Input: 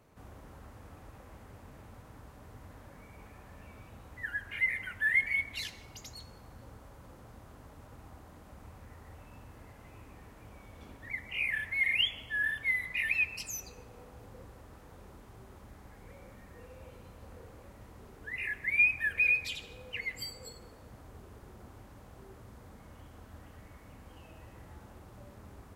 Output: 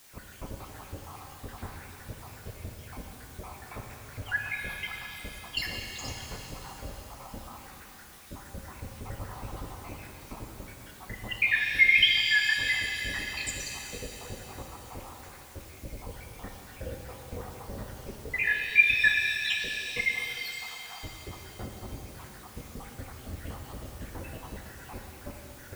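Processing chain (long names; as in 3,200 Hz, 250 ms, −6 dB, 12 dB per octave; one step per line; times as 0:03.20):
time-frequency cells dropped at random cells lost 82%
in parallel at +1.5 dB: downward compressor, threshold −49 dBFS, peak gain reduction 23.5 dB
on the sum: background noise white −64 dBFS
reverb with rising layers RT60 3.1 s, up +7 semitones, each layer −8 dB, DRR 1 dB
level +7.5 dB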